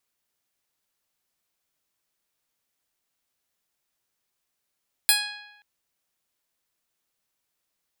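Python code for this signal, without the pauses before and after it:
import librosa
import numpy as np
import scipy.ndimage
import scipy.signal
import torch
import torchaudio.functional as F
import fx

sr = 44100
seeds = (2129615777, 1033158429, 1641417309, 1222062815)

y = fx.pluck(sr, length_s=0.53, note=80, decay_s=1.04, pick=0.13, brightness='bright')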